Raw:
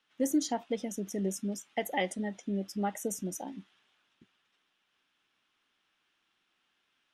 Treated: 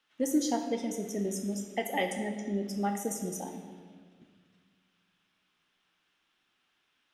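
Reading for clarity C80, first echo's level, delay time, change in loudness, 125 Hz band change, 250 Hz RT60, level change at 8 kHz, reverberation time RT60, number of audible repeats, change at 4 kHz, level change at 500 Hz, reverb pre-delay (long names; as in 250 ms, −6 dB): 8.0 dB, no echo audible, no echo audible, +1.5 dB, +1.0 dB, 2.4 s, +1.0 dB, 1.7 s, no echo audible, +1.0 dB, +1.5 dB, 13 ms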